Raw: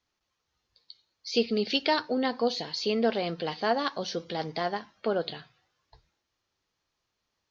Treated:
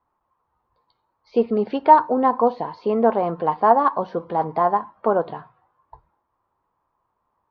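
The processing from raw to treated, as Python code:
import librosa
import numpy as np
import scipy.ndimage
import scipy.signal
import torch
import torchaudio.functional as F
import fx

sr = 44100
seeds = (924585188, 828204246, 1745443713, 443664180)

y = fx.lowpass_res(x, sr, hz=1000.0, q=4.9)
y = y * 10.0 ** (5.5 / 20.0)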